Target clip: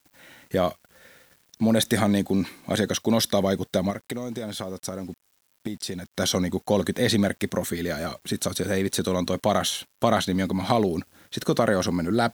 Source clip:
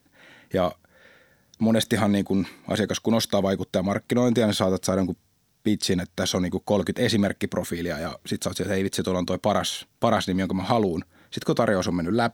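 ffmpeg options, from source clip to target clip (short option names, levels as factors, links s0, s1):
-filter_complex "[0:a]highshelf=f=6900:g=6,asettb=1/sr,asplit=3[s0][s1][s2];[s0]atrim=end=3.904[s3];[s1]atrim=start=3.9:end=6.16,asetpts=PTS-STARTPTS,afade=t=in:d=0.004:c=qsin,afade=t=out:st=2.256:d=0.004:c=qsin,acompressor=threshold=0.0355:ratio=6[s4];[s2]atrim=start=6.156[s5];[s3][s4]acrossfade=d=0.004:c1=hsin:c2=qsin[s6];[s6][s5]acrossfade=d=0.004:c1=qsin:c2=hsin,acrusher=bits=8:mix=0:aa=0.000001"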